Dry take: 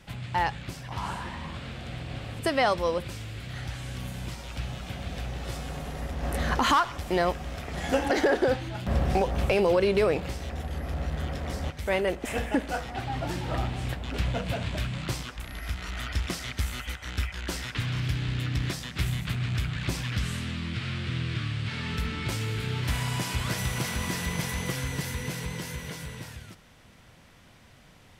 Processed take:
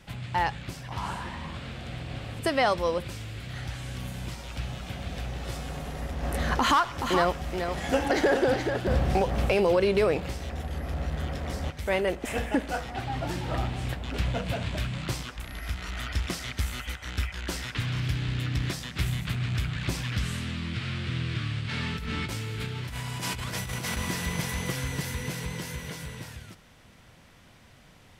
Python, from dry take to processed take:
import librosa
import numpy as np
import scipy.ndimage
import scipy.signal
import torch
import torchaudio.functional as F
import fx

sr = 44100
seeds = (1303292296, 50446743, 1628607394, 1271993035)

y = fx.echo_single(x, sr, ms=426, db=-6.5, at=(6.96, 9.51), fade=0.02)
y = fx.over_compress(y, sr, threshold_db=-33.0, ratio=-1.0, at=(21.58, 23.97))